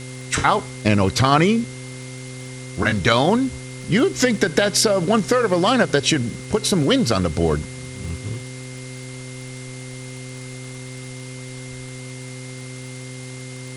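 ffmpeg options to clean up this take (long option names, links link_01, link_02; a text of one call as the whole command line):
ffmpeg -i in.wav -af "adeclick=threshold=4,bandreject=frequency=128.1:width_type=h:width=4,bandreject=frequency=256.2:width_type=h:width=4,bandreject=frequency=384.3:width_type=h:width=4,bandreject=frequency=512.4:width_type=h:width=4,bandreject=frequency=2100:width=30,afwtdn=0.011" out.wav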